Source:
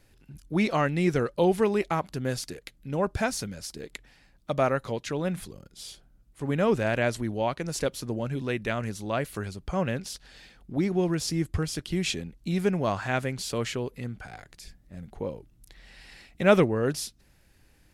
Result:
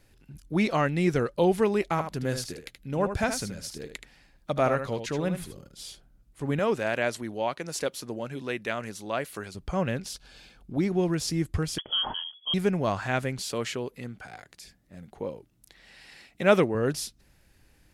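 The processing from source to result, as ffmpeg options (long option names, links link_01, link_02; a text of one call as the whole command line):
ffmpeg -i in.wav -filter_complex "[0:a]asettb=1/sr,asplit=3[link_01][link_02][link_03];[link_01]atrim=end=1.834[link_04];[link_02]atrim=start=1.83:end=5.88,asetpts=PTS-STARTPTS,afade=type=in:duration=0.004:curve=qsin,afade=type=out:start_time=4.046:duration=0.004:curve=qsin,aecho=1:1:76:0.376,atrim=end_sample=178605[link_05];[link_03]atrim=start=5.876[link_06];[link_04][link_05]acrossfade=duration=0.004:curve1=hsin:curve2=qsin[link_07];[link_07][link_06]acrossfade=duration=0.004:curve1=qsin:curve2=hsin,asettb=1/sr,asplit=3[link_08][link_09][link_10];[link_08]atrim=end=6.594[link_11];[link_09]atrim=start=6.59:end=9.55,asetpts=PTS-STARTPTS,afade=type=in:duration=0.004:curve=qsin,afade=type=out:start_time=2.956:duration=0.004:curve=qsin,highpass=frequency=340:poles=1[link_12];[link_10]atrim=start=9.546[link_13];[link_11][link_12]acrossfade=duration=0.004:curve1=hsin:curve2=qsin[link_14];[link_14][link_13]acrossfade=duration=0.004:curve1=qsin:curve2=hsin,asettb=1/sr,asplit=3[link_15][link_16][link_17];[link_15]atrim=end=10.134[link_18];[link_16]atrim=start=10.13:end=10.8,asetpts=PTS-STARTPTS,afade=type=in:duration=0.004:curve=qsin,afade=type=out:start_time=0.666:duration=0.004:curve=qsin,asuperstop=centerf=1900:order=8:qfactor=7.4[link_19];[link_17]atrim=start=10.796[link_20];[link_18][link_19]acrossfade=duration=0.004:curve1=hsin:curve2=qsin[link_21];[link_21][link_20]acrossfade=duration=0.004:curve1=qsin:curve2=hsin,asettb=1/sr,asplit=3[link_22][link_23][link_24];[link_22]atrim=end=11.784[link_25];[link_23]atrim=start=11.78:end=12.54,asetpts=PTS-STARTPTS,afade=type=in:duration=0.004:curve=qsin,afade=type=out:start_time=0.756:duration=0.004:curve=qsin,lowpass=frequency=2900:width_type=q:width=0.5098,lowpass=frequency=2900:width_type=q:width=0.6013,lowpass=frequency=2900:width_type=q:width=0.9,lowpass=frequency=2900:width_type=q:width=2.563,afreqshift=-3400[link_26];[link_24]atrim=start=12.536[link_27];[link_25][link_26]acrossfade=duration=0.004:curve1=hsin:curve2=qsin[link_28];[link_28][link_27]acrossfade=duration=0.004:curve1=qsin:curve2=hsin,asettb=1/sr,asplit=3[link_29][link_30][link_31];[link_29]atrim=end=13.394[link_32];[link_30]atrim=start=13.39:end=16.75,asetpts=PTS-STARTPTS,afade=type=in:duration=0.004:curve=qsin,afade=type=out:start_time=3.356:duration=0.004:curve=qsin,highpass=frequency=190:poles=1[link_33];[link_31]atrim=start=16.746[link_34];[link_32][link_33]acrossfade=duration=0.004:curve1=hsin:curve2=qsin[link_35];[link_35][link_34]acrossfade=duration=0.004:curve1=qsin:curve2=hsin" out.wav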